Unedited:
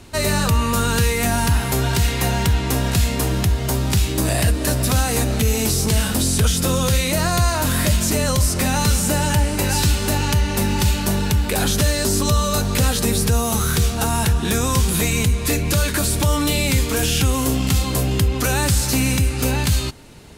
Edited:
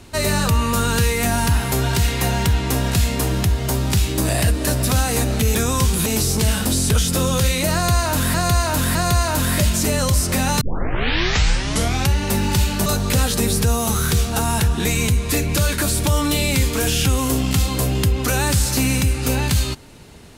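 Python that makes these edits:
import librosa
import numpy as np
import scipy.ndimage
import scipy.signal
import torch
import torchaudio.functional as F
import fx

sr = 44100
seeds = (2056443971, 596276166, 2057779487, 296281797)

y = fx.edit(x, sr, fx.repeat(start_s=7.22, length_s=0.61, count=3),
    fx.tape_start(start_s=8.88, length_s=1.55),
    fx.cut(start_s=11.13, length_s=1.38),
    fx.move(start_s=14.5, length_s=0.51, to_s=5.55), tone=tone)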